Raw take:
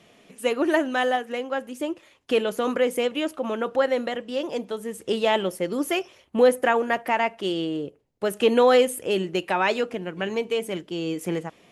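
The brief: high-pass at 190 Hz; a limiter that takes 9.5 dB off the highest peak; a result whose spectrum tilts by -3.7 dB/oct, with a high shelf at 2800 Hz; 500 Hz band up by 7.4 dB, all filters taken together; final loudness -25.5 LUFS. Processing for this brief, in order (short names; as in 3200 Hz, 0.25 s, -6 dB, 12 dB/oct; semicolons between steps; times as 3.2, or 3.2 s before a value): HPF 190 Hz; bell 500 Hz +8 dB; high shelf 2800 Hz +4 dB; gain -4 dB; limiter -13.5 dBFS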